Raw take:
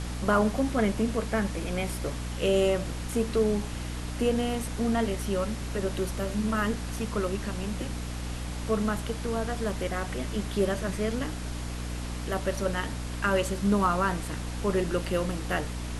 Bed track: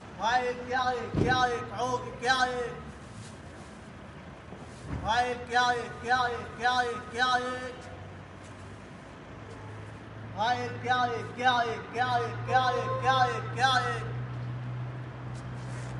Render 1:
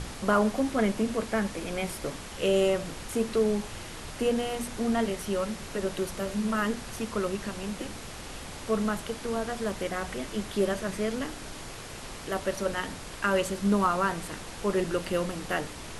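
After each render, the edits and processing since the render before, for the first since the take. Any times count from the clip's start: de-hum 60 Hz, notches 5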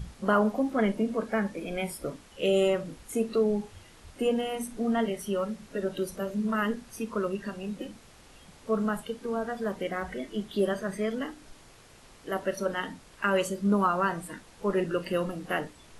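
noise print and reduce 13 dB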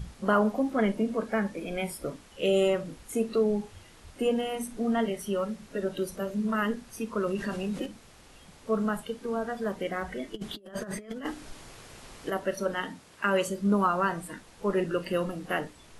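7.18–7.86 fast leveller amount 50%; 10.34–12.3 negative-ratio compressor -36 dBFS, ratio -0.5; 12.87–13.48 HPF 92 Hz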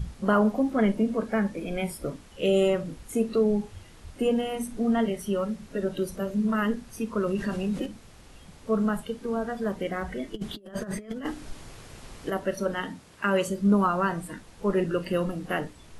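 low shelf 240 Hz +7 dB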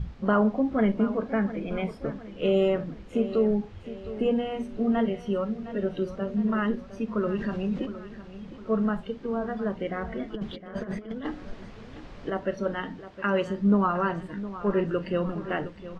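air absorption 200 m; feedback echo 0.711 s, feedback 46%, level -14 dB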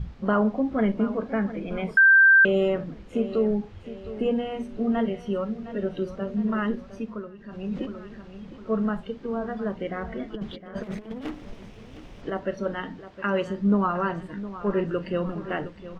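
1.97–2.45 bleep 1570 Hz -11.5 dBFS; 6.94–7.79 dip -16.5 dB, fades 0.36 s linear; 10.83–12.22 minimum comb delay 0.35 ms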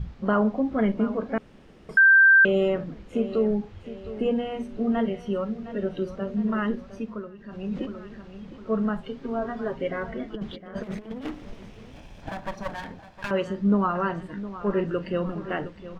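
1.38–1.89 room tone; 9.03–10.11 comb 7.4 ms, depth 76%; 11.92–13.31 minimum comb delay 1.2 ms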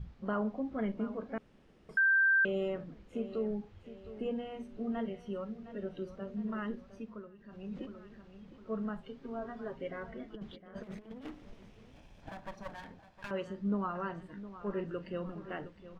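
gain -11.5 dB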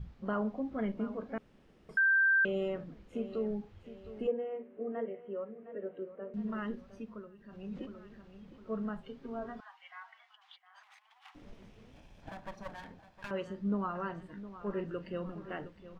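4.27–6.34 speaker cabinet 330–2100 Hz, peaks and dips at 480 Hz +8 dB, 860 Hz -6 dB, 1400 Hz -5 dB; 9.6–11.35 rippled Chebyshev high-pass 750 Hz, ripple 3 dB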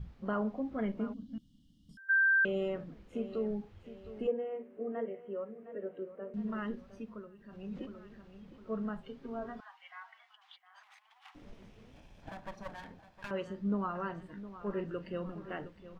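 1.13–2.09 spectral gain 310–2800 Hz -27 dB

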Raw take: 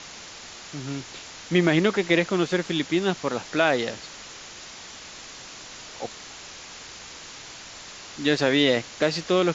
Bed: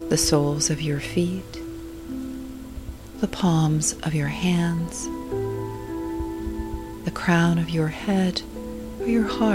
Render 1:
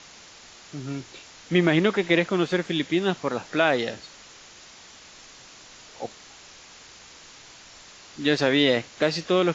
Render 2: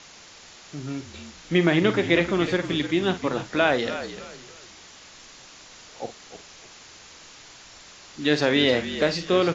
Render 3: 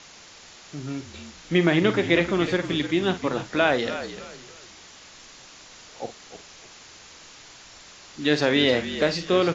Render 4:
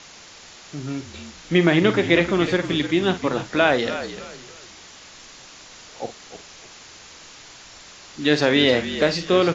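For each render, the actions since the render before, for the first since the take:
noise print and reduce 6 dB
doubler 47 ms -12 dB; frequency-shifting echo 0.303 s, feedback 31%, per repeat -51 Hz, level -11.5 dB
nothing audible
gain +3 dB

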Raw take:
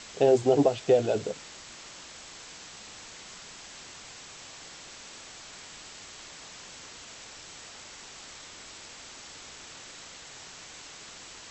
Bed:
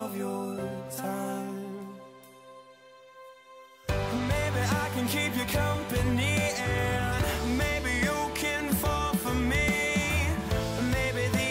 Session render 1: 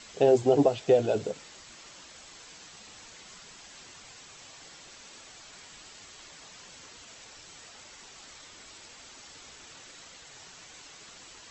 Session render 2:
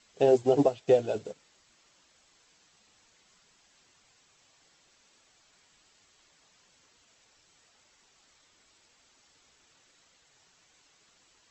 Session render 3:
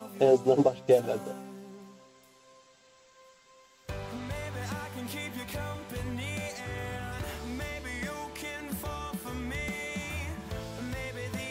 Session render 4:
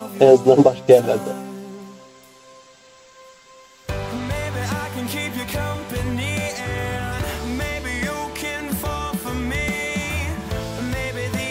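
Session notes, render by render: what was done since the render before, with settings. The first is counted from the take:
denoiser 6 dB, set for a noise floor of -47 dBFS
upward expander 1.5:1, over -47 dBFS
add bed -9 dB
gain +11.5 dB; limiter -1 dBFS, peak gain reduction 1.5 dB

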